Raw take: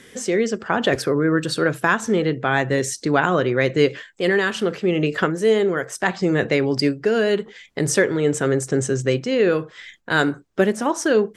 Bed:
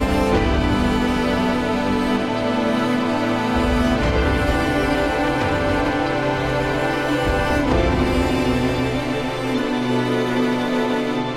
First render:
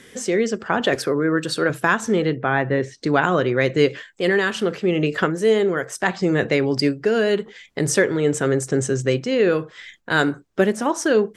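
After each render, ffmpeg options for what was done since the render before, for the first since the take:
ffmpeg -i in.wav -filter_complex "[0:a]asettb=1/sr,asplit=3[link_01][link_02][link_03];[link_01]atrim=end=0.804[link_04];[link_02]atrim=start=0.8:end=1.7,asetpts=PTS-STARTPTS,afade=type=in:duration=0.004:curve=qsin,afade=type=out:start_time=0.896:duration=0.004:curve=qsin,highpass=frequency=180:poles=1[link_05];[link_03]atrim=start=1.696[link_06];[link_04][link_05]acrossfade=duration=0.004:curve1=hsin:curve2=qsin[link_07];[link_07][link_06]acrossfade=duration=0.004:curve1=qsin:curve2=hsin,asettb=1/sr,asplit=3[link_08][link_09][link_10];[link_08]atrim=end=2.364[link_11];[link_09]atrim=start=2.36:end=3.03,asetpts=PTS-STARTPTS,afade=type=in:duration=0.004:curve=qsin,afade=type=out:start_time=0.666:duration=0.004:curve=qsin,lowpass=2300[link_12];[link_10]atrim=start=3.026[link_13];[link_11][link_12]acrossfade=duration=0.004:curve1=hsin:curve2=qsin[link_14];[link_14][link_13]acrossfade=duration=0.004:curve1=qsin:curve2=hsin" out.wav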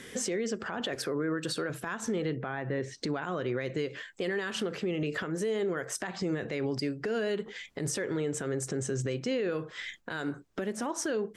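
ffmpeg -i in.wav -af "acompressor=threshold=-25dB:ratio=6,alimiter=limit=-23dB:level=0:latency=1:release=81" out.wav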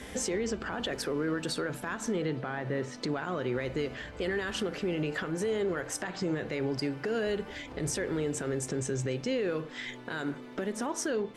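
ffmpeg -i in.wav -i bed.wav -filter_complex "[1:a]volume=-27.5dB[link_01];[0:a][link_01]amix=inputs=2:normalize=0" out.wav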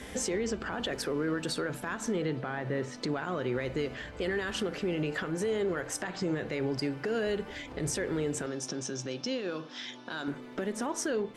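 ffmpeg -i in.wav -filter_complex "[0:a]asettb=1/sr,asplit=3[link_01][link_02][link_03];[link_01]atrim=end=8.464[link_04];[link_02]atrim=start=8.46:end=10.28,asetpts=PTS-STARTPTS,afade=type=in:duration=0.004:curve=qsin,afade=type=out:start_time=1.816:duration=0.004:curve=qsin,highpass=210,equalizer=frequency=440:width_type=q:width=4:gain=-9,equalizer=frequency=2000:width_type=q:width=4:gain=-8,equalizer=frequency=3500:width_type=q:width=4:gain=4,equalizer=frequency=5500:width_type=q:width=4:gain=10,equalizer=frequency=7900:width_type=q:width=4:gain=-10,lowpass=frequency=9800:width=0.5412,lowpass=frequency=9800:width=1.3066[link_05];[link_03]atrim=start=10.276[link_06];[link_04][link_05]acrossfade=duration=0.004:curve1=hsin:curve2=qsin[link_07];[link_07][link_06]acrossfade=duration=0.004:curve1=qsin:curve2=hsin" out.wav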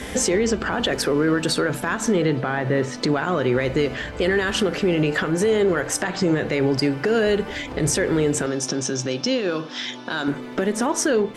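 ffmpeg -i in.wav -af "volume=11.5dB" out.wav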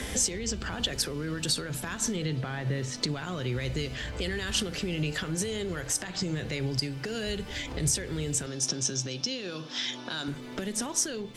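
ffmpeg -i in.wav -filter_complex "[0:a]acrossover=split=140|3000[link_01][link_02][link_03];[link_02]acompressor=threshold=-40dB:ratio=3[link_04];[link_01][link_04][link_03]amix=inputs=3:normalize=0,alimiter=limit=-15dB:level=0:latency=1:release=423" out.wav

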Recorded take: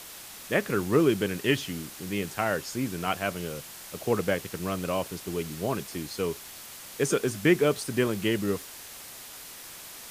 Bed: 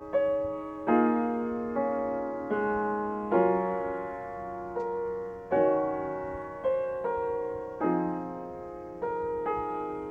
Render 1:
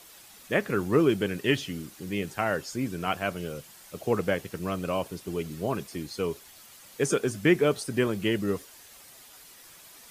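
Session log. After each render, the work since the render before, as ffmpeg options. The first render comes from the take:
ffmpeg -i in.wav -af "afftdn=noise_reduction=9:noise_floor=-44" out.wav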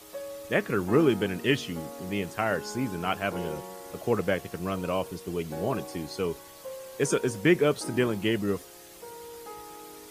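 ffmpeg -i in.wav -i bed.wav -filter_complex "[1:a]volume=-12.5dB[link_01];[0:a][link_01]amix=inputs=2:normalize=0" out.wav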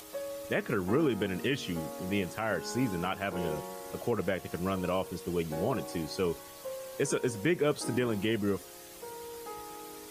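ffmpeg -i in.wav -af "alimiter=limit=-18.5dB:level=0:latency=1:release=186,acompressor=mode=upward:threshold=-48dB:ratio=2.5" out.wav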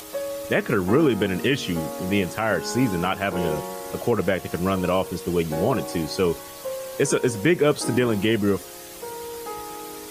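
ffmpeg -i in.wav -af "volume=9dB" out.wav

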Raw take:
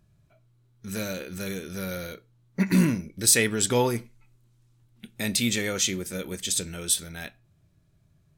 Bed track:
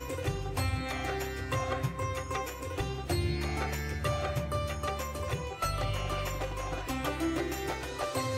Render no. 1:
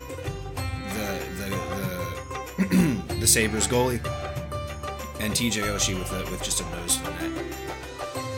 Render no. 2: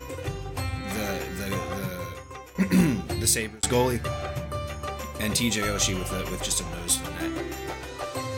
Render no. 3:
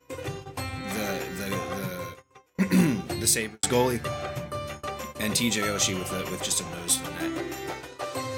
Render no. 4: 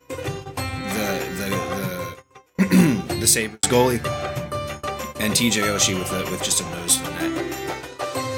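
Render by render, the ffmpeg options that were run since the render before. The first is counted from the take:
ffmpeg -i in.wav -i bed.wav -filter_complex "[1:a]volume=0.5dB[link_01];[0:a][link_01]amix=inputs=2:normalize=0" out.wav
ffmpeg -i in.wav -filter_complex "[0:a]asettb=1/sr,asplit=3[link_01][link_02][link_03];[link_01]atrim=end=6.574[link_04];[link_02]atrim=start=6.57:end=7.16,asetpts=PTS-STARTPTS,afade=type=in:duration=0.004:curve=qsin,afade=type=out:start_time=0.586:duration=0.004:curve=qsin,acrossover=split=230|3000[link_05][link_06][link_07];[link_06]acompressor=threshold=-35dB:ratio=2.5:attack=3.2:release=140:knee=2.83:detection=peak[link_08];[link_05][link_08][link_07]amix=inputs=3:normalize=0[link_09];[link_03]atrim=start=7.156[link_10];[link_04][link_09]acrossfade=duration=0.004:curve1=hsin:curve2=qsin[link_11];[link_11][link_10]acrossfade=duration=0.004:curve1=qsin:curve2=hsin,asplit=3[link_12][link_13][link_14];[link_12]atrim=end=2.55,asetpts=PTS-STARTPTS,afade=type=out:start_time=1.53:duration=1.02:silence=0.298538[link_15];[link_13]atrim=start=2.55:end=3.63,asetpts=PTS-STARTPTS,afade=type=in:duration=0.004:curve=hsin:silence=0.298538,afade=type=out:start_time=0.6:duration=0.48[link_16];[link_14]atrim=start=3.63,asetpts=PTS-STARTPTS,afade=type=in:duration=0.004:curve=hsin[link_17];[link_15][link_16][link_17]concat=n=3:v=0:a=1" out.wav
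ffmpeg -i in.wav -af "highpass=120,agate=range=-21dB:threshold=-37dB:ratio=16:detection=peak" out.wav
ffmpeg -i in.wav -af "volume=6dB" out.wav

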